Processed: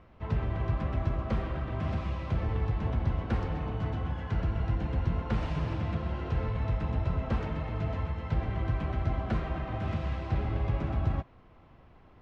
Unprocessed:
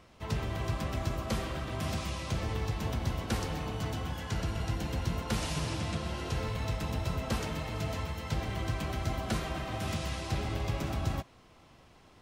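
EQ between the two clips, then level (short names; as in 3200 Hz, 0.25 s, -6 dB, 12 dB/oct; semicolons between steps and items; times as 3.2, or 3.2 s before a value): LPF 2000 Hz 12 dB/oct; low shelf 93 Hz +8 dB; 0.0 dB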